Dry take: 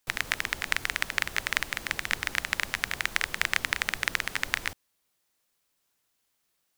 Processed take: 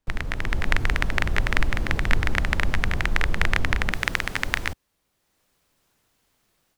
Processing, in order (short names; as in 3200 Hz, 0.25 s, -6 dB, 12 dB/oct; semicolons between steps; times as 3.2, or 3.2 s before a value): tilt -4 dB/oct, from 3.92 s -2 dB/oct; AGC gain up to 11 dB